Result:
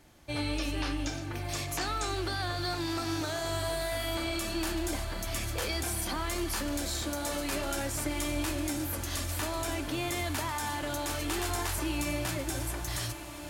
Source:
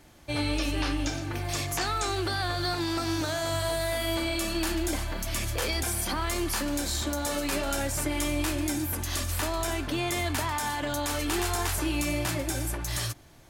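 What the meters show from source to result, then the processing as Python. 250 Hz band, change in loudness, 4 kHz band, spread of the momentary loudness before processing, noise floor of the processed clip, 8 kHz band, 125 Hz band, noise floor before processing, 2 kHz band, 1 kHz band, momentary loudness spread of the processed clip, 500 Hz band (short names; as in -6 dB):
-3.5 dB, -3.5 dB, -3.5 dB, 3 LU, -38 dBFS, -3.5 dB, -3.5 dB, -35 dBFS, -3.5 dB, -3.5 dB, 3 LU, -3.5 dB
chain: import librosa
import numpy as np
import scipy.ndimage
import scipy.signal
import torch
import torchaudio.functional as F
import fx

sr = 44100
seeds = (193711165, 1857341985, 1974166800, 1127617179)

y = fx.echo_diffused(x, sr, ms=1327, feedback_pct=70, wet_db=-12)
y = F.gain(torch.from_numpy(y), -4.0).numpy()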